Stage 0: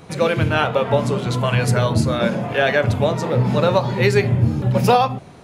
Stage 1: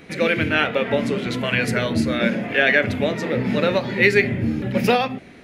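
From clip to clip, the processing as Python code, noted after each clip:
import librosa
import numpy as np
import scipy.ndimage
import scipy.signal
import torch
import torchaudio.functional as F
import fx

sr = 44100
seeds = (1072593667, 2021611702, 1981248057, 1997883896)

y = fx.graphic_eq_10(x, sr, hz=(125, 250, 1000, 2000, 8000), db=(-10, 7, -10, 12, -5))
y = y * librosa.db_to_amplitude(-2.0)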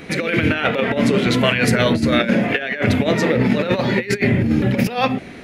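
y = fx.over_compress(x, sr, threshold_db=-22.0, ratio=-0.5)
y = y * librosa.db_to_amplitude(5.5)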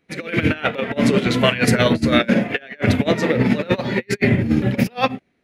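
y = fx.upward_expand(x, sr, threshold_db=-36.0, expansion=2.5)
y = y * librosa.db_to_amplitude(3.0)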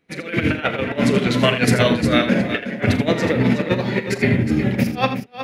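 y = fx.echo_multitap(x, sr, ms=(42, 81, 366), db=(-14.5, -11.0, -10.5))
y = y * librosa.db_to_amplitude(-1.0)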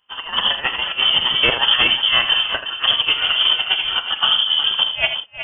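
y = fx.freq_invert(x, sr, carrier_hz=3300)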